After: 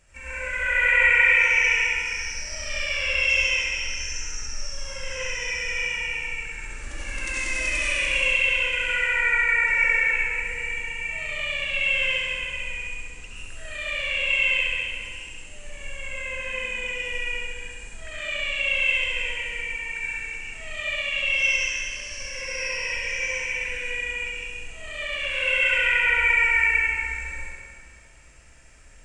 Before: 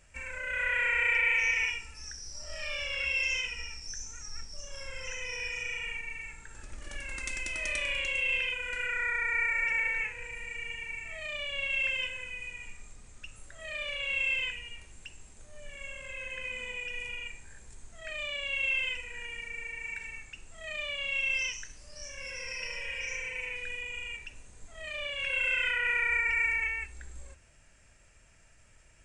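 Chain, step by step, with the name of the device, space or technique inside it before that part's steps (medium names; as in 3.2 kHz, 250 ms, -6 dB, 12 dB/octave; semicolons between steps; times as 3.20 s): tunnel (flutter echo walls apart 11.6 m, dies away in 0.79 s; reverberation RT60 2.2 s, pre-delay 74 ms, DRR -6.5 dB)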